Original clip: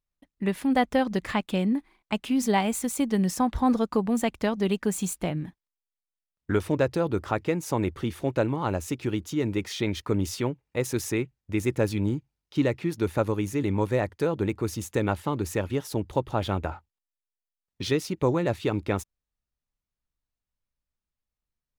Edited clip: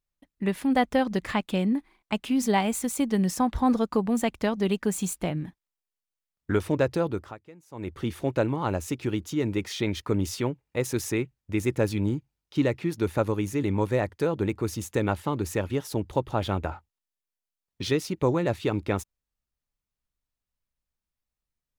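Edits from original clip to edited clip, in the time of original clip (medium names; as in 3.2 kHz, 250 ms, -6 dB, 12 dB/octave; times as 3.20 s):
7.02–8.07 s: dip -22.5 dB, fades 0.36 s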